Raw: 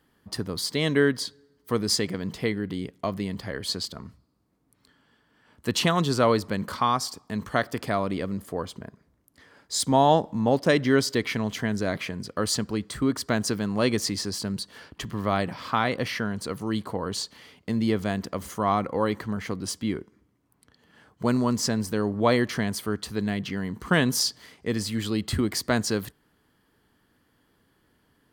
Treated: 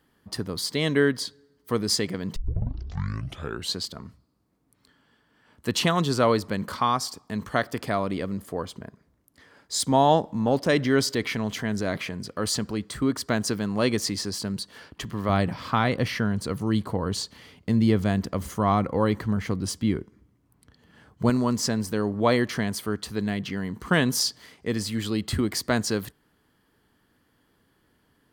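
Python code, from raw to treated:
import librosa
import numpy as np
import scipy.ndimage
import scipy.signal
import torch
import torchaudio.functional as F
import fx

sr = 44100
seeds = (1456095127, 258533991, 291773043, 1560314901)

y = fx.transient(x, sr, attack_db=-3, sustain_db=2, at=(10.41, 12.79))
y = fx.low_shelf(y, sr, hz=170.0, db=10.5, at=(15.29, 21.3))
y = fx.edit(y, sr, fx.tape_start(start_s=2.36, length_s=1.41), tone=tone)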